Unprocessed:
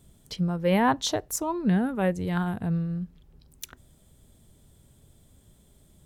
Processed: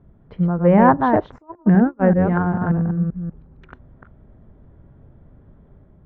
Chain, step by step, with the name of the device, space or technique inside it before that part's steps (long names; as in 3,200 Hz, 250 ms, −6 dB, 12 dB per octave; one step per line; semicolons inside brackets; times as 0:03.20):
delay that plays each chunk backwards 194 ms, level −5 dB
0:01.38–0:02.05: noise gate −24 dBFS, range −32 dB
action camera in a waterproof case (low-pass filter 1,600 Hz 24 dB per octave; automatic gain control gain up to 3 dB; level +6 dB; AAC 96 kbit/s 22,050 Hz)